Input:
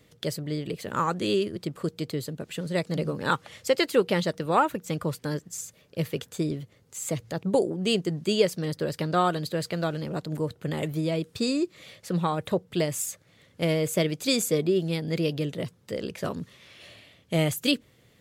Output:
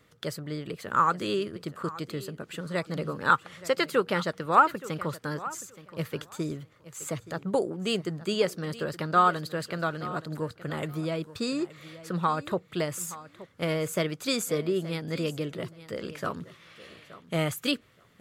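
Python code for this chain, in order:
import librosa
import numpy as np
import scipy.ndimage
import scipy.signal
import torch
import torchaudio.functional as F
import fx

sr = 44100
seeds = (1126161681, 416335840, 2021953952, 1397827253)

p1 = fx.peak_eq(x, sr, hz=1300.0, db=11.0, octaves=0.91)
p2 = p1 + fx.echo_feedback(p1, sr, ms=873, feedback_pct=17, wet_db=-16.5, dry=0)
y = p2 * librosa.db_to_amplitude(-4.5)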